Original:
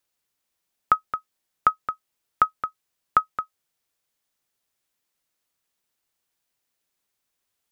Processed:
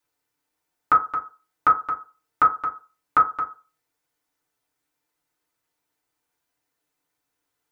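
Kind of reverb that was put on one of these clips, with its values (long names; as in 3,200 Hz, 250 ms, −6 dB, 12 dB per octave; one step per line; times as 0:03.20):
feedback delay network reverb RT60 0.34 s, low-frequency decay 0.8×, high-frequency decay 0.3×, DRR −6.5 dB
level −4 dB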